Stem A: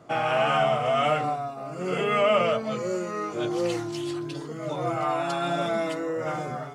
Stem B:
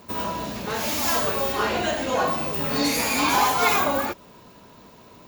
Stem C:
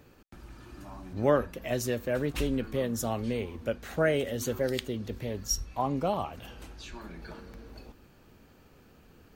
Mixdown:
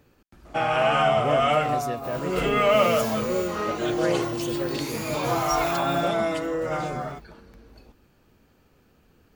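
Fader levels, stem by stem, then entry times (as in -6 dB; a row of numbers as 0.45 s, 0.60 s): +2.0 dB, -11.0 dB, -3.0 dB; 0.45 s, 1.95 s, 0.00 s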